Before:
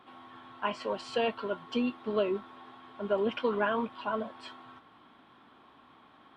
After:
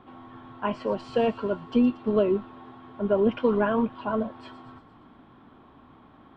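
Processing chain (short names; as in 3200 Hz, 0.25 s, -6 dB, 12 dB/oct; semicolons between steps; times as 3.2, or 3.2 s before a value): tilt -3.5 dB/oct; on a send: thin delay 0.116 s, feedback 59%, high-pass 4700 Hz, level -8 dB; on the sum: gain +2.5 dB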